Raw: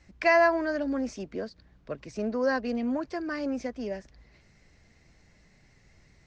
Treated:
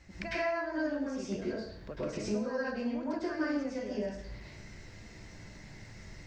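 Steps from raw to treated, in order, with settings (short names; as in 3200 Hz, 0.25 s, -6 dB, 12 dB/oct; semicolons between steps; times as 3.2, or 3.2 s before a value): compressor 12:1, threshold -42 dBFS, peak gain reduction 24.5 dB; plate-style reverb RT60 0.64 s, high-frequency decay 0.85×, pre-delay 90 ms, DRR -8.5 dB; gain +1.5 dB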